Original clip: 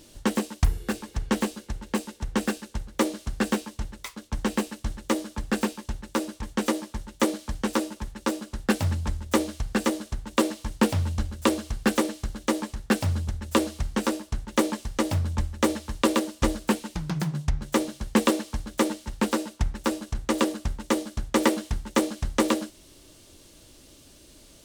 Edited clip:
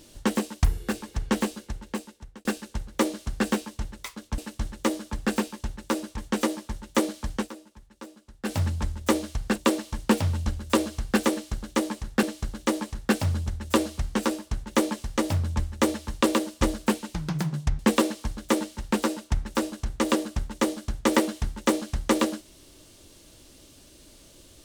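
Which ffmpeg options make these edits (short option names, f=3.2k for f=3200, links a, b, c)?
-filter_complex "[0:a]asplit=8[a][b][c][d][e][f][g][h];[a]atrim=end=2.45,asetpts=PTS-STARTPTS,afade=t=out:st=1.59:d=0.86[i];[b]atrim=start=2.45:end=4.382,asetpts=PTS-STARTPTS,afade=t=in:d=0.004:c=hsin[j];[c]atrim=start=4.628:end=7.74,asetpts=PTS-STARTPTS,afade=t=out:st=2.962:d=0.15:c=qsin:silence=0.158489[k];[d]atrim=start=7.74:end=8.68,asetpts=PTS-STARTPTS,volume=-16dB[l];[e]atrim=start=8.68:end=9.812,asetpts=PTS-STARTPTS,afade=t=in:d=0.15:c=qsin:silence=0.158489[m];[f]atrim=start=10.278:end=12.952[n];[g]atrim=start=12.038:end=17.602[o];[h]atrim=start=18.078[p];[i][j]concat=n=2:v=0:a=1[q];[k][l][m]concat=n=3:v=0:a=1[r];[q][r]acrossfade=d=0.004:c1=hsin:c2=hsin[s];[s][n]acrossfade=d=0.004:c1=hsin:c2=hsin[t];[t][o]acrossfade=d=0.004:c1=hsin:c2=hsin[u];[u][p]acrossfade=d=0.004:c1=hsin:c2=hsin"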